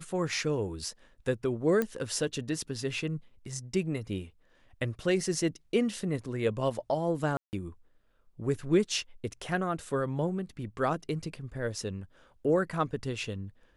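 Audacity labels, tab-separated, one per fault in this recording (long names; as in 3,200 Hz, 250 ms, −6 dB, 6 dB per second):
1.820000	1.820000	click −16 dBFS
7.370000	7.530000	drop-out 159 ms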